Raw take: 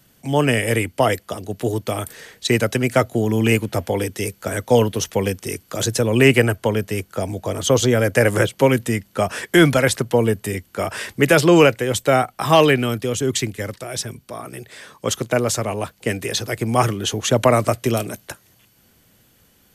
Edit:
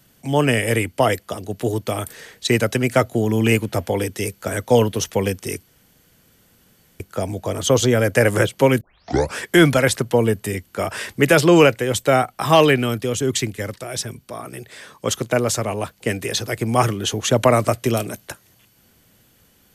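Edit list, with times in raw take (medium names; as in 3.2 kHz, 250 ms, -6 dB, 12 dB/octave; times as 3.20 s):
5.67–7.00 s: room tone
8.81 s: tape start 0.56 s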